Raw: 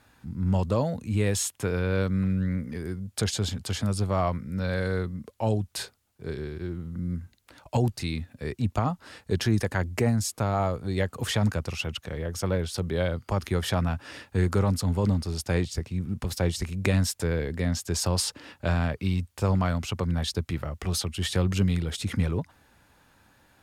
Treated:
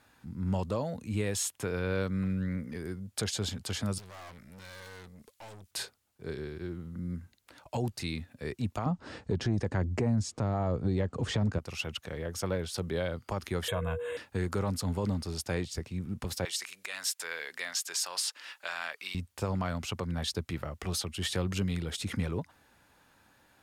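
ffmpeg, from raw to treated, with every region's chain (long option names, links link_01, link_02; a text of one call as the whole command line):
ffmpeg -i in.wav -filter_complex "[0:a]asettb=1/sr,asplit=3[link_01][link_02][link_03];[link_01]atrim=end=3.984[link_04];[link_02]atrim=start=3.98:end=5.71,asetpts=PTS-STARTPTS,afade=type=in:duration=0.004:curve=qsin,afade=type=out:start_time=1.726:duration=0.004:curve=qsin,tiltshelf=frequency=1300:gain=-7.5,aeval=exprs='(tanh(126*val(0)+0.5)-tanh(0.5))/126':channel_layout=same[link_05];[link_03]atrim=start=5.706[link_06];[link_04][link_05]acrossfade=duration=0.004:curve1=hsin:curve2=qsin[link_07];[link_07][link_06]acrossfade=duration=0.004:curve1=qsin:curve2=hsin,asettb=1/sr,asplit=3[link_08][link_09][link_10];[link_08]atrim=end=8.864[link_11];[link_09]atrim=start=8.86:end=11.59,asetpts=PTS-STARTPTS,afade=type=in:duration=0.004:curve=qsin,afade=type=out:start_time=2.726:duration=0.004:curve=qsin,lowpass=frequency=7900:width=0.5412,lowpass=frequency=7900:width=1.3066,tiltshelf=frequency=670:gain=7,acontrast=86[link_12];[link_10]atrim=start=11.586[link_13];[link_11][link_12]acrossfade=duration=0.004:curve1=hsin:curve2=qsin[link_14];[link_14][link_13]acrossfade=duration=0.004:curve1=qsin:curve2=hsin,asettb=1/sr,asplit=3[link_15][link_16][link_17];[link_15]atrim=end=13.684[link_18];[link_16]atrim=start=13.68:end=14.17,asetpts=PTS-STARTPTS,afade=type=in:duration=0.004:curve=qsin,afade=type=out:start_time=0.486:duration=0.004:curve=qsin,aecho=1:1:1.9:0.68,atrim=end_sample=21609,aeval=exprs='val(0)+0.0316*sin(2*PI*480*n/s)':channel_layout=same,asuperstop=centerf=5100:order=8:qfactor=1.6[link_19];[link_17]atrim=start=14.166[link_20];[link_18][link_19]acrossfade=duration=0.004:curve1=hsin:curve2=qsin[link_21];[link_21][link_20]acrossfade=duration=0.004:curve1=qsin:curve2=hsin,asettb=1/sr,asplit=3[link_22][link_23][link_24];[link_22]atrim=end=16.454[link_25];[link_23]atrim=start=16.45:end=19.15,asetpts=PTS-STARTPTS,afade=type=in:duration=0.004:curve=qsin,afade=type=out:start_time=2.696:duration=0.004:curve=qsin,acontrast=53,highpass=1300[link_26];[link_24]atrim=start=19.146[link_27];[link_25][link_26]acrossfade=duration=0.004:curve1=hsin:curve2=qsin[link_28];[link_28][link_27]acrossfade=duration=0.004:curve1=qsin:curve2=hsin,lowshelf=frequency=150:gain=-6.5,alimiter=limit=-18.5dB:level=0:latency=1:release=238,volume=-2.5dB" out.wav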